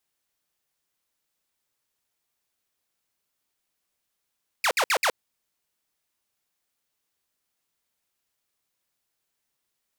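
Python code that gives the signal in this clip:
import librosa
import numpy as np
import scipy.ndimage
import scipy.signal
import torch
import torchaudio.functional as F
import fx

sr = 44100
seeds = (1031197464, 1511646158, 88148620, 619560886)

y = fx.laser_zaps(sr, level_db=-17, start_hz=2700.0, end_hz=420.0, length_s=0.07, wave='saw', shots=4, gap_s=0.06)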